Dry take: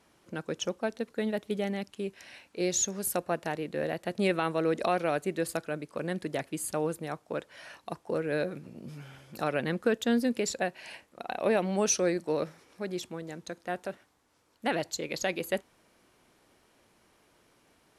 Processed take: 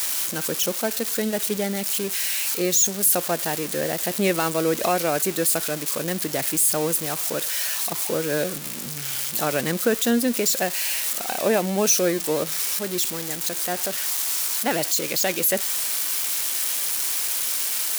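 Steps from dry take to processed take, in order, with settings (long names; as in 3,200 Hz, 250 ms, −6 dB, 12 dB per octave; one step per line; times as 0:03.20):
spike at every zero crossing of −21.5 dBFS
level +5.5 dB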